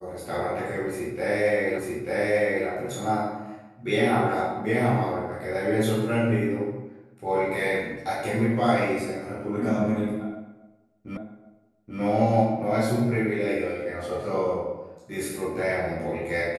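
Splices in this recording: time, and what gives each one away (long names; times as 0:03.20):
0:01.78: the same again, the last 0.89 s
0:11.17: the same again, the last 0.83 s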